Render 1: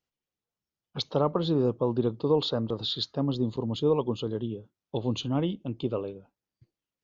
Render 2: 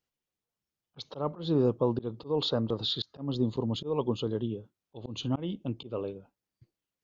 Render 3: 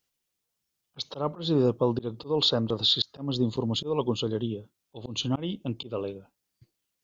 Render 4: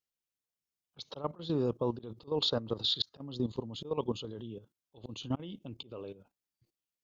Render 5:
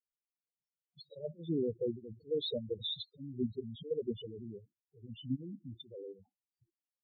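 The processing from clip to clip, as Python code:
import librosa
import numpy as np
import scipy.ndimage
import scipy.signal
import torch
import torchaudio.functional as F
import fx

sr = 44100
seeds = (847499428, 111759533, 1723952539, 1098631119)

y1 = fx.auto_swell(x, sr, attack_ms=198.0)
y2 = fx.high_shelf(y1, sr, hz=2500.0, db=9.0)
y2 = y2 * 10.0 ** (2.0 / 20.0)
y3 = fx.level_steps(y2, sr, step_db=13)
y3 = y3 * 10.0 ** (-3.5 / 20.0)
y4 = fx.spec_topn(y3, sr, count=4)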